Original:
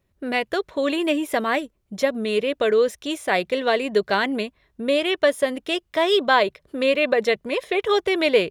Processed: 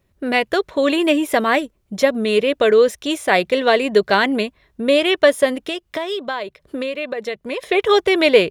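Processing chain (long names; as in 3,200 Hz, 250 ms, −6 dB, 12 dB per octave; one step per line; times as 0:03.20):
0:05.54–0:07.63: downward compressor 6 to 1, threshold −28 dBFS, peak gain reduction 15 dB
level +5.5 dB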